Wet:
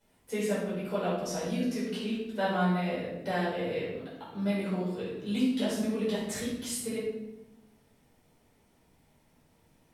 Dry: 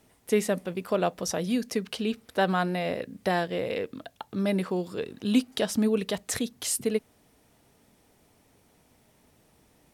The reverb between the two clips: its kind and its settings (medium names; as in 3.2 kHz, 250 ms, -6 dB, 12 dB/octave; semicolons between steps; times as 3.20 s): simulated room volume 380 m³, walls mixed, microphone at 4.9 m; trim -16 dB